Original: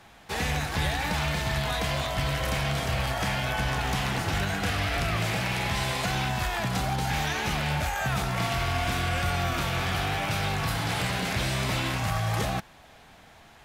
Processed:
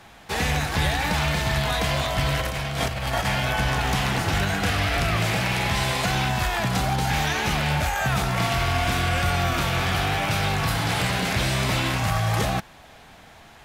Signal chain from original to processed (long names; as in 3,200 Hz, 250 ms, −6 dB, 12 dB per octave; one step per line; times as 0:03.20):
0:02.39–0:03.25: compressor whose output falls as the input rises −30 dBFS, ratio −0.5
level +4.5 dB